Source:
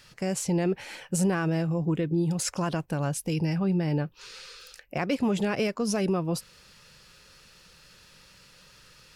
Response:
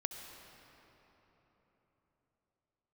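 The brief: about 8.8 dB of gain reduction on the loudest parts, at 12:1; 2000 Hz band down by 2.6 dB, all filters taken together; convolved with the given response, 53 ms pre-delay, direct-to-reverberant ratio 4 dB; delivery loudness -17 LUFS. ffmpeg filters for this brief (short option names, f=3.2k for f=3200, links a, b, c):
-filter_complex "[0:a]equalizer=f=2k:t=o:g=-3.5,acompressor=threshold=-30dB:ratio=12,asplit=2[a][b];[1:a]atrim=start_sample=2205,adelay=53[c];[b][c]afir=irnorm=-1:irlink=0,volume=-4dB[d];[a][d]amix=inputs=2:normalize=0,volume=17.5dB"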